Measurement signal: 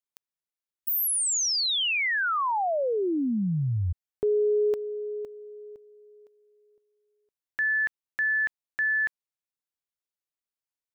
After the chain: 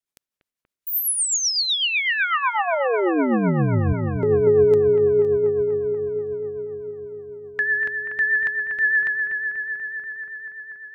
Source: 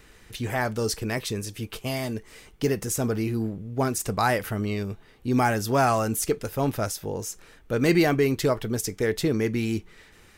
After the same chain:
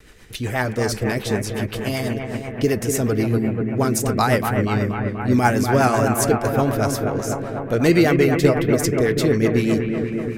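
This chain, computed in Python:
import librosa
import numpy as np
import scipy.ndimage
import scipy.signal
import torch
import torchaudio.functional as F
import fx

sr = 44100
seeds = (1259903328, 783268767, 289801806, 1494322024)

y = fx.echo_bbd(x, sr, ms=241, stages=4096, feedback_pct=78, wet_db=-6.0)
y = fx.rotary(y, sr, hz=8.0)
y = fx.vibrato(y, sr, rate_hz=0.51, depth_cents=11.0)
y = y * 10.0 ** (6.5 / 20.0)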